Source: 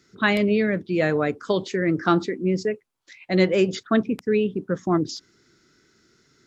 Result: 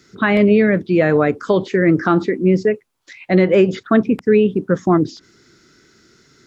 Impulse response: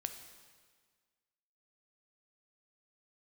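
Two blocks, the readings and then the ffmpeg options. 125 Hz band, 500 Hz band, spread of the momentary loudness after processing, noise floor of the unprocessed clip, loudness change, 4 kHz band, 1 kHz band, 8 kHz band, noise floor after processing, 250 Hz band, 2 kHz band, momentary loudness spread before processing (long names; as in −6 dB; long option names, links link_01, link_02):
+7.5 dB, +7.5 dB, 6 LU, −64 dBFS, +7.0 dB, −1.0 dB, +5.5 dB, can't be measured, −56 dBFS, +7.5 dB, +4.5 dB, 6 LU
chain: -filter_complex "[0:a]acrossover=split=2600[link_01][link_02];[link_02]acompressor=threshold=-49dB:ratio=4:attack=1:release=60[link_03];[link_01][link_03]amix=inputs=2:normalize=0,alimiter=limit=-12.5dB:level=0:latency=1:release=112,volume=8.5dB"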